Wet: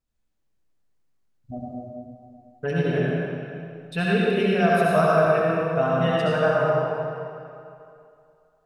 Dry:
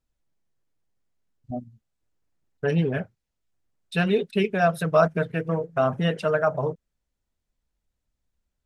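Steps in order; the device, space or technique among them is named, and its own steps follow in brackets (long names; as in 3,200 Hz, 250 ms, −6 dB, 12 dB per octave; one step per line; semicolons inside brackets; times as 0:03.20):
stairwell (convolution reverb RT60 2.6 s, pre-delay 61 ms, DRR −5.5 dB)
level −3.5 dB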